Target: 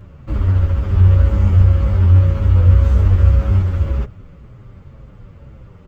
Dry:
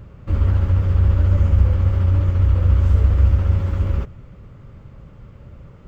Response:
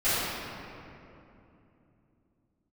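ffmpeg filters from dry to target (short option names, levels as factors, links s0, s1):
-filter_complex "[0:a]asettb=1/sr,asplit=3[s0][s1][s2];[s0]atrim=end=0.914[s3];[s1]atrim=start=0.91:end=3.62,asetpts=PTS-STARTPTS,afade=t=in:d=0.004:c=qsin,afade=t=out:st=2.706:d=0.004:c=qsin,asplit=2[s4][s5];[s5]adelay=20,volume=0.75[s6];[s4][s6]amix=inputs=2:normalize=0,atrim=end_sample=119511[s7];[s2]atrim=start=3.616[s8];[s3][s7]acrossfade=d=0.004:c1=hsin:c2=qsin[s9];[s9][s8]acrossfade=d=0.004:c1=qsin:c2=hsin,asplit=2[s10][s11];[s11]adelay=8.1,afreqshift=-1.9[s12];[s10][s12]amix=inputs=2:normalize=1,volume=1.68"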